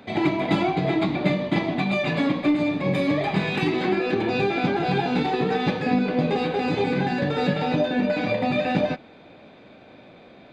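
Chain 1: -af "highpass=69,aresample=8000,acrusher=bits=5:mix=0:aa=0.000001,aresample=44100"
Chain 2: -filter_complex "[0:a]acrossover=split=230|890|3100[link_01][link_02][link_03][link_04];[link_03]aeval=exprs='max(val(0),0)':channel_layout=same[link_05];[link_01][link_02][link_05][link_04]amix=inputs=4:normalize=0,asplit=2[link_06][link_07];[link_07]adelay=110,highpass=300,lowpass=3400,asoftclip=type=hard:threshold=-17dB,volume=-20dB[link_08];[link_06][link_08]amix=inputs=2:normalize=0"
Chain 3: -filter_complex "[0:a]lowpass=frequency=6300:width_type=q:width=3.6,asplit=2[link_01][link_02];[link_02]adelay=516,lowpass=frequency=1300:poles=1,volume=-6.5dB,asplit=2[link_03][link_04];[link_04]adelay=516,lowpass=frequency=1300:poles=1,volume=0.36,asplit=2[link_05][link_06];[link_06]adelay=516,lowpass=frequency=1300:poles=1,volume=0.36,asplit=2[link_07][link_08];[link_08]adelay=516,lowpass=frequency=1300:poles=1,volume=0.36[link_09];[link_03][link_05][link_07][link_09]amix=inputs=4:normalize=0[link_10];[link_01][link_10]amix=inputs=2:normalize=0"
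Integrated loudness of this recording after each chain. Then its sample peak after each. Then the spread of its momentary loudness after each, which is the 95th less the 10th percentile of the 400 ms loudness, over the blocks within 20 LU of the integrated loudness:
−23.5, −24.0, −22.5 LKFS; −8.0, −8.5, −7.0 dBFS; 2, 2, 5 LU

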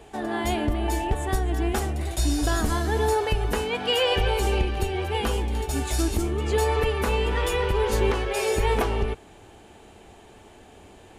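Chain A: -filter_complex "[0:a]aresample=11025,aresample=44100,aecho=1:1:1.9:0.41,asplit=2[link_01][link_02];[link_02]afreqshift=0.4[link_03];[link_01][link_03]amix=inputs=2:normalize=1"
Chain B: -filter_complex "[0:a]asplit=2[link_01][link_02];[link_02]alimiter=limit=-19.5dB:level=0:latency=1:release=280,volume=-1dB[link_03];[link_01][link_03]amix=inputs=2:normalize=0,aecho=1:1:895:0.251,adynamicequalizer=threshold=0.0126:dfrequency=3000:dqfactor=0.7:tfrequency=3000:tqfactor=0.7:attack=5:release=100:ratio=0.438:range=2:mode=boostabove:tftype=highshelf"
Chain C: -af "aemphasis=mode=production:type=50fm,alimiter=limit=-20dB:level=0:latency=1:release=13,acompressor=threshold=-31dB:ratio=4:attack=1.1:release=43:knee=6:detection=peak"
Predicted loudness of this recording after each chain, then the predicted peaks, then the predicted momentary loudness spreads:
−27.5, −21.0, −34.0 LKFS; −12.0, −7.5, −24.0 dBFS; 9, 6, 15 LU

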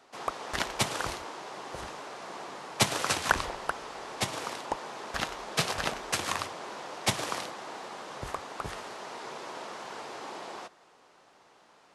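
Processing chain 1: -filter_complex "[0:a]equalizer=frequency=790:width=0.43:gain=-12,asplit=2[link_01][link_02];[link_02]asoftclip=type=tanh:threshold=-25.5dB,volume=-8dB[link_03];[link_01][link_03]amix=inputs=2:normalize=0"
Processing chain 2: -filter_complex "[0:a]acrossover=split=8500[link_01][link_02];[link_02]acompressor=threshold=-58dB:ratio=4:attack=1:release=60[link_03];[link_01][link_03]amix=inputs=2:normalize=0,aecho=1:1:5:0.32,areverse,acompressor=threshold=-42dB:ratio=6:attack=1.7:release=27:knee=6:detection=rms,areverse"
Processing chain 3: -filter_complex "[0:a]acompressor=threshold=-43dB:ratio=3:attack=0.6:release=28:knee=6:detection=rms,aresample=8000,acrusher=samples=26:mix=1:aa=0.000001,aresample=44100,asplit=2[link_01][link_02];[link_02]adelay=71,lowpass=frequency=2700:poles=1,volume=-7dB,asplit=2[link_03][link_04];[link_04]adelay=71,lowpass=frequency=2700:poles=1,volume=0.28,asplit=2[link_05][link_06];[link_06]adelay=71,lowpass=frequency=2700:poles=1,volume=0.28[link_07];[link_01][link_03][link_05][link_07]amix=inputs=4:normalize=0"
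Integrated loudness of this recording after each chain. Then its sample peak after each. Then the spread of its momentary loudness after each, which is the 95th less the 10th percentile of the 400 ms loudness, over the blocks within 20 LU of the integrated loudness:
−36.0, −45.0, −48.5 LKFS; −11.5, −31.0, −31.0 dBFS; 15, 3, 3 LU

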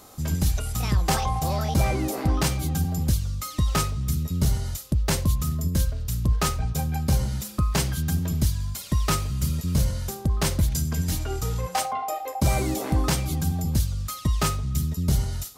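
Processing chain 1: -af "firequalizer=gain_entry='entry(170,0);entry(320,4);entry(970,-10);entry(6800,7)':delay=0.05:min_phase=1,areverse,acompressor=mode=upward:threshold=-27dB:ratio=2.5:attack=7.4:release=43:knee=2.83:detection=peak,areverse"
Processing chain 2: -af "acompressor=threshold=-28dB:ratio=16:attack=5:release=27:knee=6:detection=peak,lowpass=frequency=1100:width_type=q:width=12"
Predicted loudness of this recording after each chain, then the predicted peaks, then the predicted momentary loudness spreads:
−24.5, −28.5 LKFS; −8.5, −7.5 dBFS; 4, 10 LU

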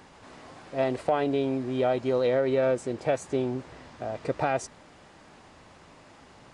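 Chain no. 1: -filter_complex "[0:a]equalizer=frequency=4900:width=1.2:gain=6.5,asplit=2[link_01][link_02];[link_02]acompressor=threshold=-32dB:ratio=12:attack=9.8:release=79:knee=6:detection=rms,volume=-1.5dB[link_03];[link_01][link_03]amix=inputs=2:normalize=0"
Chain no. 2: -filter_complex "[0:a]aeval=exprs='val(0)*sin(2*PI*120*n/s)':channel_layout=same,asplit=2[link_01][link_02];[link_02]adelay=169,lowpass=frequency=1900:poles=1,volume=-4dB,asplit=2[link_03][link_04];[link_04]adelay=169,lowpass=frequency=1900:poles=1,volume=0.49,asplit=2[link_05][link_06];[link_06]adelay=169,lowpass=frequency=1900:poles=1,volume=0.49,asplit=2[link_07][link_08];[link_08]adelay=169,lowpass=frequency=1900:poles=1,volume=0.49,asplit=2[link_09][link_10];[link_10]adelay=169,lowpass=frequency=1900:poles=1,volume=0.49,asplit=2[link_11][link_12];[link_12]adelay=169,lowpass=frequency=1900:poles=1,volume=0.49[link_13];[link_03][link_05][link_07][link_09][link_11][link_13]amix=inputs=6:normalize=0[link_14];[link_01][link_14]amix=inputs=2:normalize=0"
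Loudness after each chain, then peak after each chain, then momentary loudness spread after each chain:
−25.5, −29.5 LKFS; −10.0, −12.5 dBFS; 15, 13 LU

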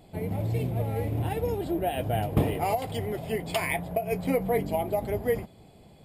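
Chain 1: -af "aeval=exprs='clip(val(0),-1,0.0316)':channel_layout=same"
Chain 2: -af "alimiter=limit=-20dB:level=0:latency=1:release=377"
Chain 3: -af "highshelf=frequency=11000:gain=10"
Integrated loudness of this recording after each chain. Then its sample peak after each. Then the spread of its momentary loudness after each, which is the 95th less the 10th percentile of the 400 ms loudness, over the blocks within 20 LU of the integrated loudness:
−31.0, −31.5, −29.0 LKFS; −12.0, −20.0, −12.0 dBFS; 4, 4, 5 LU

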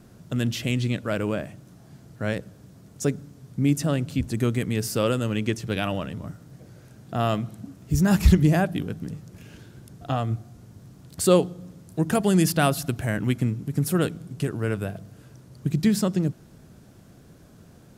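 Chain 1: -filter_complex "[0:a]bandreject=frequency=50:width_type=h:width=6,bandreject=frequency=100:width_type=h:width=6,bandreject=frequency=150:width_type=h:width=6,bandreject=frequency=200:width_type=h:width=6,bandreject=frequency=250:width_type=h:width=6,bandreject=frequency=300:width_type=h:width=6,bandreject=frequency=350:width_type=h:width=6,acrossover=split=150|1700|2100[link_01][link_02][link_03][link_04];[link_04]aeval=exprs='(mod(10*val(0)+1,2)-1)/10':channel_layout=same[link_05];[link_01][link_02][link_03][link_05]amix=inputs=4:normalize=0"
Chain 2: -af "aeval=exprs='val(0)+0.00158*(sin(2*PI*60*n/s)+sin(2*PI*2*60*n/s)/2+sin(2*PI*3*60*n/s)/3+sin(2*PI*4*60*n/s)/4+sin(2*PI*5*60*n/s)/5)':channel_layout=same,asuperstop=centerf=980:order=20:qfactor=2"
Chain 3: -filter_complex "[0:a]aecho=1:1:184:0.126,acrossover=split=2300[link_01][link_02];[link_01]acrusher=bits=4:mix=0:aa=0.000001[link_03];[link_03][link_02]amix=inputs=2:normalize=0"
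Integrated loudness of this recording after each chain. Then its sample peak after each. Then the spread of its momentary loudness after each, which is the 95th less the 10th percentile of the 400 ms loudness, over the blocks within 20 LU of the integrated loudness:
−25.5, −25.0, −24.5 LKFS; −6.0, −5.5, −5.0 dBFS; 16, 17, 14 LU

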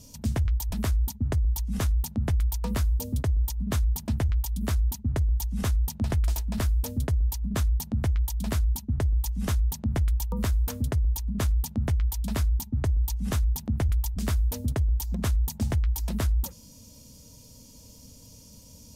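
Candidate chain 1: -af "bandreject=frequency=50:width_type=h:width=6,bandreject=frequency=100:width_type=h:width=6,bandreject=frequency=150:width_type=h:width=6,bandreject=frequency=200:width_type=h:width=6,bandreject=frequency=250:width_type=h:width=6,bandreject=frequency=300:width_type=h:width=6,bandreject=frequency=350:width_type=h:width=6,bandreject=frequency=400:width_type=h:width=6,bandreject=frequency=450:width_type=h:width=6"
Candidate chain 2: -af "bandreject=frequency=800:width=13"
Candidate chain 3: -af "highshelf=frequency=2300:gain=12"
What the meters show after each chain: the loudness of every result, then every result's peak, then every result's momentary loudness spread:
−29.0, −28.0, −25.5 LKFS; −16.0, −17.5, −8.5 dBFS; 2, 2, 15 LU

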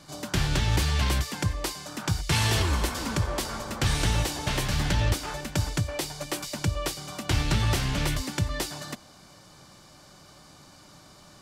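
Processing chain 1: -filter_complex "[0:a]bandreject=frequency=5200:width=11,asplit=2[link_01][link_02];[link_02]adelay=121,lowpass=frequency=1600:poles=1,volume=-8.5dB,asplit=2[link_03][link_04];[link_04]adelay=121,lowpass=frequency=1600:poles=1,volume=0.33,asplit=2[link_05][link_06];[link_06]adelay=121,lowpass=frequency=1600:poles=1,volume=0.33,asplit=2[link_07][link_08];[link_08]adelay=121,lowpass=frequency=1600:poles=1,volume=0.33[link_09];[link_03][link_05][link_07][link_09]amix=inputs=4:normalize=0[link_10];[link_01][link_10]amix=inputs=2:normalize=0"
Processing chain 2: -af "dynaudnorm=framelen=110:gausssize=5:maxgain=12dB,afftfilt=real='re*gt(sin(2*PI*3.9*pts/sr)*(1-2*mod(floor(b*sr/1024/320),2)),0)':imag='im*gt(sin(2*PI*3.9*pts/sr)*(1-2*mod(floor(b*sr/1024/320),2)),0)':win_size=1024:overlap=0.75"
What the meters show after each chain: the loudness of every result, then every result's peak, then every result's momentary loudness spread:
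−27.5, −20.5 LKFS; −12.0, −3.5 dBFS; 8, 8 LU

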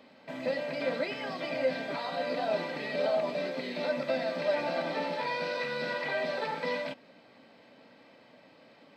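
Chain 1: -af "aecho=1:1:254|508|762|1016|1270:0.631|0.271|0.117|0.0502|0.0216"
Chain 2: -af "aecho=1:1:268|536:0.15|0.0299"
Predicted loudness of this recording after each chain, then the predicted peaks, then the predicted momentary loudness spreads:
−30.5, −32.5 LKFS; −17.0, −18.0 dBFS; 7, 5 LU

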